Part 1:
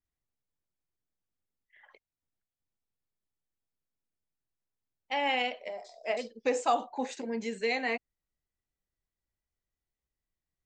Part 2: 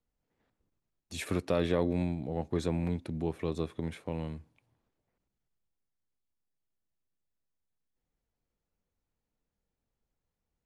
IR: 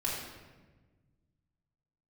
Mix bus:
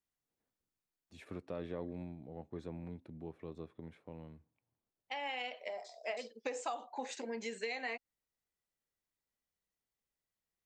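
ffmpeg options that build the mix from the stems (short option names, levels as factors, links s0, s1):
-filter_complex "[0:a]lowshelf=f=250:g=-12,acompressor=threshold=0.0178:ratio=10,volume=0.944[s0];[1:a]lowpass=f=1800:p=1,volume=0.237,asplit=2[s1][s2];[s2]apad=whole_len=469721[s3];[s0][s3]sidechaincompress=threshold=0.002:ratio=8:attack=30:release=1410[s4];[s4][s1]amix=inputs=2:normalize=0,lowshelf=f=71:g=-8"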